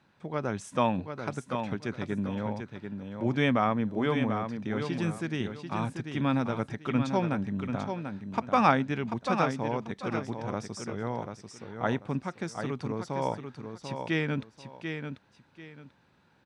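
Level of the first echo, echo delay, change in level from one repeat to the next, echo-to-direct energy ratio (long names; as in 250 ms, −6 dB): −7.0 dB, 740 ms, −12.0 dB, −6.5 dB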